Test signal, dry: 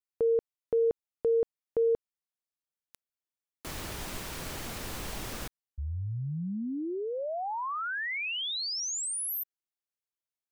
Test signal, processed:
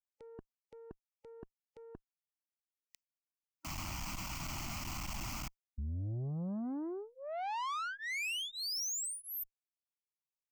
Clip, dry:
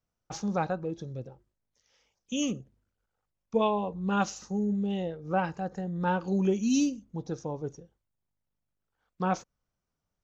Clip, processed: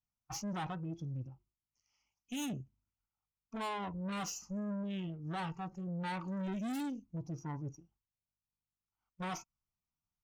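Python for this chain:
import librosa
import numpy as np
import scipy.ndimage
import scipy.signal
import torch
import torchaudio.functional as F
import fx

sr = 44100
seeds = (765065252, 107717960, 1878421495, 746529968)

y = fx.fixed_phaser(x, sr, hz=2500.0, stages=8)
y = fx.tube_stage(y, sr, drive_db=40.0, bias=0.35)
y = fx.noise_reduce_blind(y, sr, reduce_db=12)
y = F.gain(torch.from_numpy(y), 4.0).numpy()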